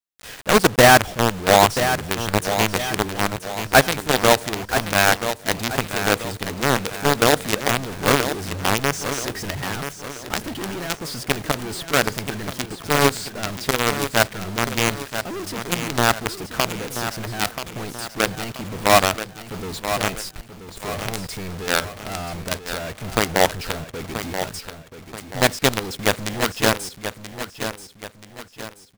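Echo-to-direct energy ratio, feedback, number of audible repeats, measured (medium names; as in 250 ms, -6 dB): -8.5 dB, 42%, 4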